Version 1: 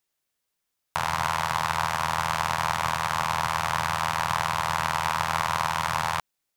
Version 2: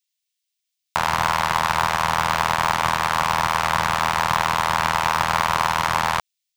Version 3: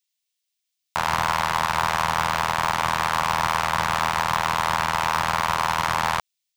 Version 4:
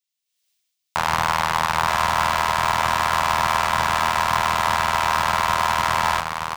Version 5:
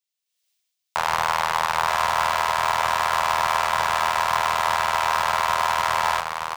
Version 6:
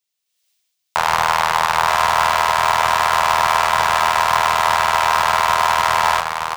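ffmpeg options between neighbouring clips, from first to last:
ffmpeg -i in.wav -filter_complex "[0:a]equalizer=frequency=15000:width_type=o:width=1.2:gain=-10.5,acrossover=split=2500[link_01][link_02];[link_01]acrusher=bits=4:mix=0:aa=0.5[link_03];[link_03][link_02]amix=inputs=2:normalize=0,volume=6dB" out.wav
ffmpeg -i in.wav -af "alimiter=limit=-8dB:level=0:latency=1:release=44" out.wav
ffmpeg -i in.wav -filter_complex "[0:a]dynaudnorm=framelen=250:gausssize=3:maxgain=16.5dB,asplit=2[link_01][link_02];[link_02]aecho=0:1:922:0.501[link_03];[link_01][link_03]amix=inputs=2:normalize=0,volume=-5.5dB" out.wav
ffmpeg -i in.wav -af "lowshelf=frequency=360:width_type=q:width=1.5:gain=-6.5,volume=-2dB" out.wav
ffmpeg -i in.wav -af "bandreject=frequency=279.5:width_type=h:width=4,bandreject=frequency=559:width_type=h:width=4,bandreject=frequency=838.5:width_type=h:width=4,bandreject=frequency=1118:width_type=h:width=4,bandreject=frequency=1397.5:width_type=h:width=4,bandreject=frequency=1677:width_type=h:width=4,bandreject=frequency=1956.5:width_type=h:width=4,bandreject=frequency=2236:width_type=h:width=4,bandreject=frequency=2515.5:width_type=h:width=4,bandreject=frequency=2795:width_type=h:width=4,bandreject=frequency=3074.5:width_type=h:width=4,bandreject=frequency=3354:width_type=h:width=4,bandreject=frequency=3633.5:width_type=h:width=4,bandreject=frequency=3913:width_type=h:width=4,bandreject=frequency=4192.5:width_type=h:width=4,bandreject=frequency=4472:width_type=h:width=4,bandreject=frequency=4751.5:width_type=h:width=4,bandreject=frequency=5031:width_type=h:width=4,bandreject=frequency=5310.5:width_type=h:width=4,bandreject=frequency=5590:width_type=h:width=4,bandreject=frequency=5869.5:width_type=h:width=4,bandreject=frequency=6149:width_type=h:width=4,bandreject=frequency=6428.5:width_type=h:width=4,bandreject=frequency=6708:width_type=h:width=4,bandreject=frequency=6987.5:width_type=h:width=4,bandreject=frequency=7267:width_type=h:width=4,bandreject=frequency=7546.5:width_type=h:width=4,bandreject=frequency=7826:width_type=h:width=4,volume=6dB" out.wav

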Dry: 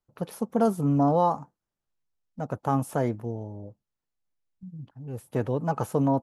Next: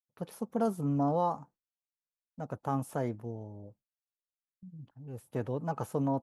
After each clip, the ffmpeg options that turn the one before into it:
ffmpeg -i in.wav -af "agate=range=-33dB:threshold=-49dB:ratio=3:detection=peak,volume=-7dB" out.wav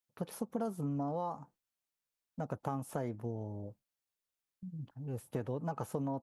ffmpeg -i in.wav -af "acompressor=threshold=-38dB:ratio=5,volume=4dB" out.wav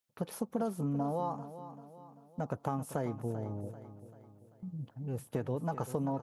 ffmpeg -i in.wav -af "aecho=1:1:390|780|1170|1560|1950:0.224|0.105|0.0495|0.0232|0.0109,volume=2.5dB" out.wav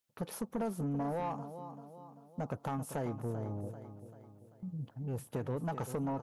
ffmpeg -i in.wav -af "asoftclip=type=tanh:threshold=-30dB,volume=1dB" out.wav

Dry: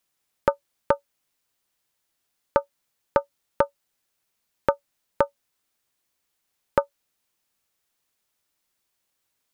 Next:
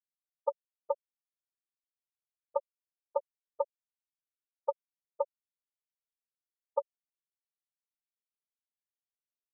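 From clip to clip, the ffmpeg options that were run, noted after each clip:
ffmpeg -i in.wav -af "afftfilt=real='re*gte(hypot(re,im),0.447)':imag='im*gte(hypot(re,im),0.447)':win_size=1024:overlap=0.75,volume=-8.5dB" out.wav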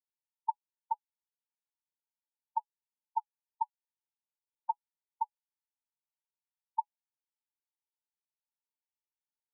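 ffmpeg -i in.wav -af "asuperpass=centerf=900:order=12:qfactor=6.7,volume=6dB" out.wav

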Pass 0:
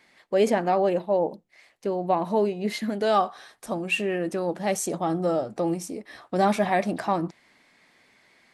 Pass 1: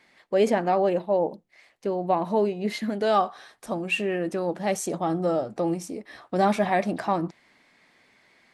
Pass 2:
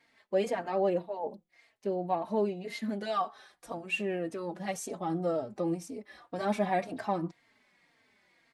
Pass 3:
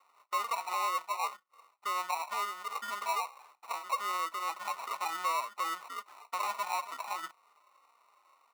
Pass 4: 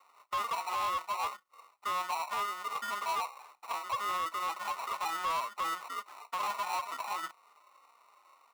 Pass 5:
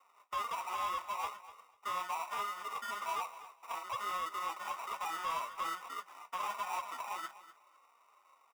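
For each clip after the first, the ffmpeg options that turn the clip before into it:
ffmpeg -i in.wav -af "highshelf=frequency=7100:gain=-5" out.wav
ffmpeg -i in.wav -filter_complex "[0:a]asplit=2[link_01][link_02];[link_02]adelay=3.8,afreqshift=-1.9[link_03];[link_01][link_03]amix=inputs=2:normalize=1,volume=-4.5dB" out.wav
ffmpeg -i in.wav -af "alimiter=level_in=3dB:limit=-24dB:level=0:latency=1:release=262,volume=-3dB,acrusher=samples=27:mix=1:aa=0.000001,highpass=frequency=1100:width_type=q:width=3.7,volume=1dB" out.wav
ffmpeg -i in.wav -af "asoftclip=type=tanh:threshold=-31.5dB,volume=3.5dB" out.wav
ffmpeg -i in.wav -af "flanger=delay=3.9:depth=8.4:regen=-47:speed=1.2:shape=sinusoidal,asuperstop=centerf=4200:order=8:qfactor=7,aecho=1:1:247|494:0.168|0.0285" out.wav

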